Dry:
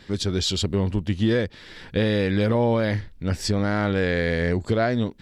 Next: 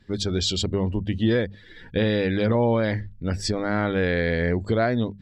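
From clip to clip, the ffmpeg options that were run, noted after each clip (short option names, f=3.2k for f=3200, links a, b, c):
-af "afftdn=nr=15:nf=-41,bandreject=f=50:t=h:w=6,bandreject=f=100:t=h:w=6,bandreject=f=150:t=h:w=6,bandreject=f=200:t=h:w=6"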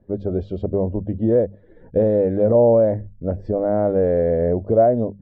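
-af "lowpass=f=610:t=q:w=3.8"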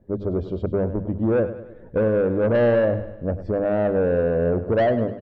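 -filter_complex "[0:a]asoftclip=type=tanh:threshold=-15dB,asplit=2[a][b];[b]aecho=0:1:101|202|303|404|505:0.224|0.112|0.056|0.028|0.014[c];[a][c]amix=inputs=2:normalize=0"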